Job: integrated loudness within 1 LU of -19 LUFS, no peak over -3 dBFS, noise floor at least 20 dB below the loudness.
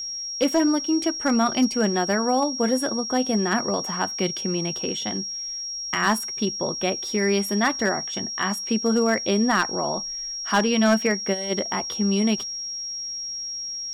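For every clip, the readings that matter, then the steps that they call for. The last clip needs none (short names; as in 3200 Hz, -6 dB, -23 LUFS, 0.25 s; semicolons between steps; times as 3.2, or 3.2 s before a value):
clipped 0.2%; flat tops at -12.5 dBFS; steady tone 5600 Hz; tone level -29 dBFS; loudness -23.5 LUFS; peak -12.5 dBFS; loudness target -19.0 LUFS
-> clip repair -12.5 dBFS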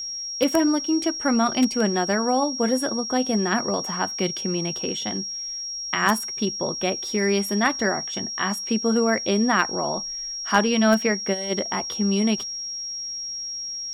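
clipped 0.0%; steady tone 5600 Hz; tone level -29 dBFS
-> notch 5600 Hz, Q 30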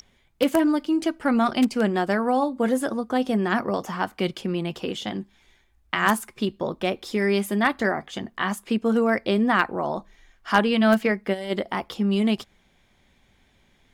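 steady tone none; loudness -24.0 LUFS; peak -3.0 dBFS; loudness target -19.0 LUFS
-> gain +5 dB; limiter -3 dBFS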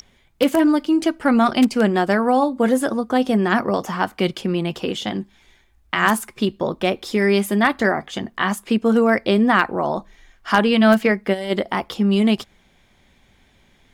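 loudness -19.5 LUFS; peak -3.0 dBFS; noise floor -58 dBFS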